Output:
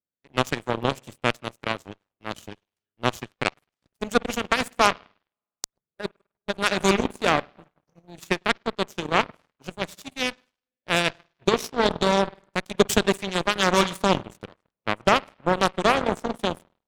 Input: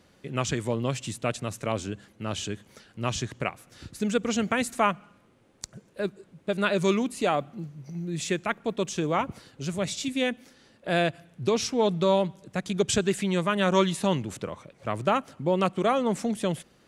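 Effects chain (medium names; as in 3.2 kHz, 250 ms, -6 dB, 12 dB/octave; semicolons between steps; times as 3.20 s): spring tank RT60 1.4 s, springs 51 ms, chirp 80 ms, DRR 7 dB; Chebyshev shaper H 5 -19 dB, 7 -13 dB, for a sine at -7.5 dBFS; harmonic-percussive split harmonic -5 dB; trim +6.5 dB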